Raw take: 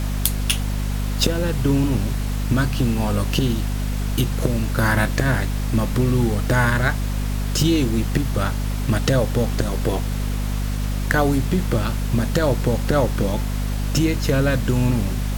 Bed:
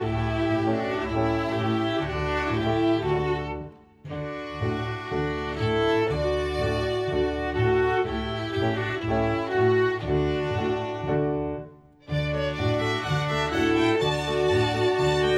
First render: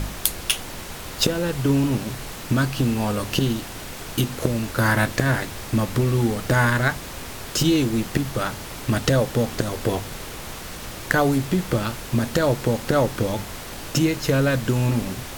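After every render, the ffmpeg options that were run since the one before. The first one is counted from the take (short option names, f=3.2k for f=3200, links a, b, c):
-af "bandreject=f=50:t=h:w=4,bandreject=f=100:t=h:w=4,bandreject=f=150:t=h:w=4,bandreject=f=200:t=h:w=4,bandreject=f=250:t=h:w=4"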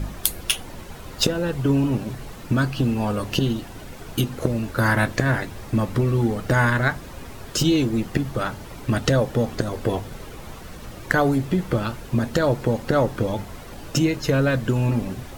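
-af "afftdn=nr=10:nf=-35"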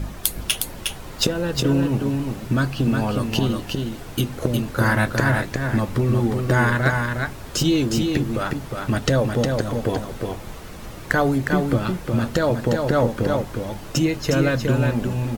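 -af "aecho=1:1:360:0.596"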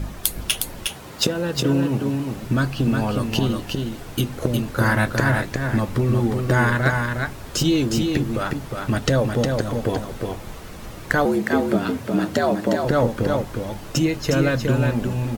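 -filter_complex "[0:a]asettb=1/sr,asplit=3[a][b][c];[a]atrim=end=0.874[d];[b]atrim=start=0.87:end=2.33,asetpts=PTS-STARTPTS,afade=t=in:d=0.004:c=qsin,afade=t=out:st=1.456:d=0.004:c=qsin,highpass=99[e];[c]atrim=start=2.326[f];[d][e]acrossfade=d=0.004:c1=hsin:c2=qsin[g];[g][f]acrossfade=d=0.004:c1=qsin:c2=hsin,asettb=1/sr,asplit=3[h][i][j];[h]atrim=end=11.254[k];[i]atrim=start=11.25:end=12.85,asetpts=PTS-STARTPTS,afade=t=in:d=0.004:c=qsin,afade=t=out:st=1.596:d=0.004:c=qsin,afreqshift=78[l];[j]atrim=start=12.846[m];[k][l]acrossfade=d=0.004:c1=hsin:c2=qsin[n];[n][m]acrossfade=d=0.004:c1=qsin:c2=hsin"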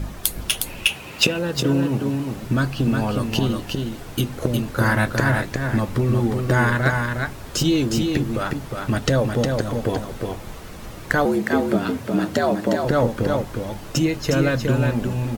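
-filter_complex "[0:a]asettb=1/sr,asplit=3[a][b][c];[a]atrim=end=0.664[d];[b]atrim=start=0.66:end=1.39,asetpts=PTS-STARTPTS,afade=t=in:d=0.004:c=qsin,afade=t=out:st=0.726:d=0.004:c=qsin,equalizer=f=2.6k:t=o:w=0.38:g=15[e];[c]atrim=start=1.386[f];[d][e]acrossfade=d=0.004:c1=hsin:c2=qsin[g];[g][f]acrossfade=d=0.004:c1=qsin:c2=hsin"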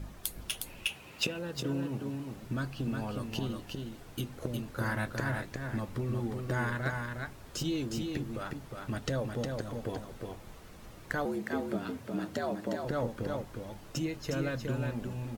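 -af "volume=-14dB"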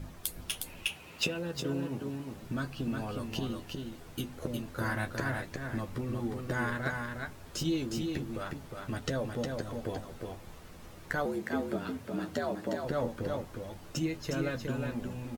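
-filter_complex "[0:a]asplit=2[a][b];[b]adelay=12,volume=-8.5dB[c];[a][c]amix=inputs=2:normalize=0"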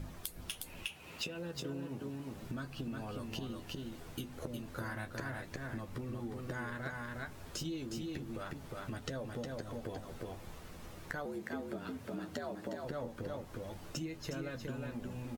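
-af "acompressor=threshold=-40dB:ratio=3"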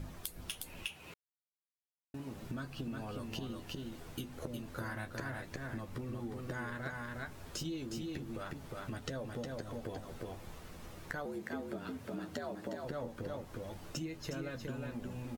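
-filter_complex "[0:a]asplit=3[a][b][c];[a]atrim=end=1.14,asetpts=PTS-STARTPTS,afade=t=out:st=1.136:d=0.004:c=hsin[d];[b]atrim=start=1.14:end=2.14,asetpts=PTS-STARTPTS,volume=0[e];[c]atrim=start=2.14,asetpts=PTS-STARTPTS,afade=t=in:d=0.004:c=hsin[f];[d][e][f]concat=n=3:v=0:a=1"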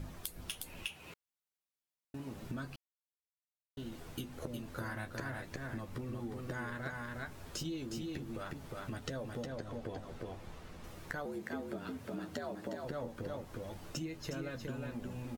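-filter_complex "[0:a]asettb=1/sr,asplit=3[a][b][c];[a]atrim=end=9.464[d];[b]atrim=start=9.46:end=10.84,asetpts=PTS-STARTPTS,afade=t=in:d=0.004:c=qsin,afade=t=out:st=1.376:d=0.004:c=qsin,highshelf=f=8k:g=-10.5[e];[c]atrim=start=10.836[f];[d][e]acrossfade=d=0.004:c1=hsin:c2=qsin[g];[g][f]acrossfade=d=0.004:c1=qsin:c2=hsin,asplit=3[h][i][j];[h]atrim=end=2.76,asetpts=PTS-STARTPTS,afade=t=out:st=2.756:d=0.004:c=hsin[k];[i]atrim=start=2.76:end=3.77,asetpts=PTS-STARTPTS,volume=0[l];[j]atrim=start=3.77,asetpts=PTS-STARTPTS,afade=t=in:d=0.004:c=hsin[m];[k][l][m]concat=n=3:v=0:a=1"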